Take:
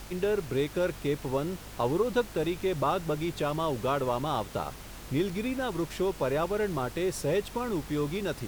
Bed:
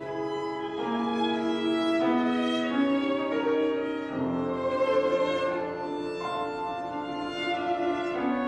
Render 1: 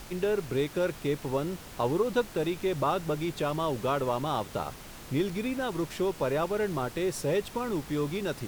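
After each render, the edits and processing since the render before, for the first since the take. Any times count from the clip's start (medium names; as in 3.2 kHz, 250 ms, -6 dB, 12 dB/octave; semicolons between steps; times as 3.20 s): de-hum 50 Hz, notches 2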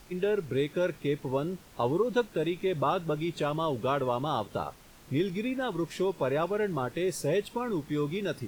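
noise print and reduce 9 dB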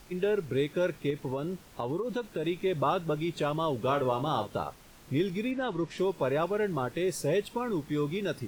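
1.10–2.45 s: compression, threshold -28 dBFS; 3.79–4.50 s: doubling 39 ms -9 dB; 5.51–5.98 s: distance through air 63 m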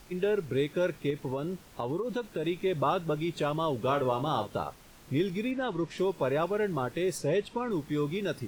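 7.18–7.71 s: distance through air 53 m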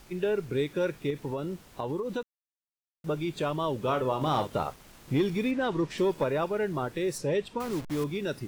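2.23–3.04 s: mute; 4.21–6.24 s: waveshaping leveller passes 1; 7.60–8.04 s: send-on-delta sampling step -35.5 dBFS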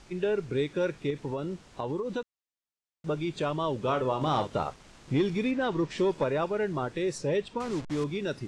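low-pass 8.2 kHz 24 dB/octave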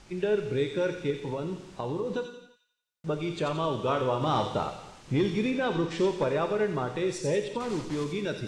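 feedback echo behind a high-pass 88 ms, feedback 48%, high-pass 2.9 kHz, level -3 dB; gated-style reverb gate 360 ms falling, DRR 8 dB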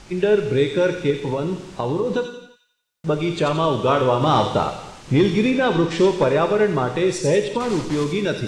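trim +9.5 dB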